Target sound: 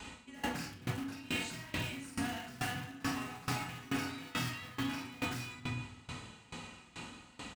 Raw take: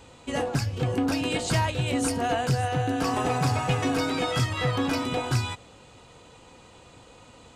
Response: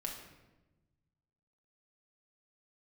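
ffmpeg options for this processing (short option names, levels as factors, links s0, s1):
-filter_complex "[0:a]asplit=2[s0][s1];[s1]adelay=49,volume=0.794[s2];[s0][s2]amix=inputs=2:normalize=0,asplit=2[s3][s4];[s4]aeval=exprs='(mod(10*val(0)+1,2)-1)/10':c=same,volume=0.355[s5];[s3][s5]amix=inputs=2:normalize=0,equalizer=f=125:t=o:w=1:g=-7,equalizer=f=250:t=o:w=1:g=5,equalizer=f=500:t=o:w=1:g=-11,equalizer=f=2000:t=o:w=1:g=4[s6];[1:a]atrim=start_sample=2205[s7];[s6][s7]afir=irnorm=-1:irlink=0,areverse,acompressor=threshold=0.0158:ratio=5,areverse,highpass=52,aeval=exprs='val(0)*pow(10,-21*if(lt(mod(2.3*n/s,1),2*abs(2.3)/1000),1-mod(2.3*n/s,1)/(2*abs(2.3)/1000),(mod(2.3*n/s,1)-2*abs(2.3)/1000)/(1-2*abs(2.3)/1000))/20)':c=same,volume=1.78"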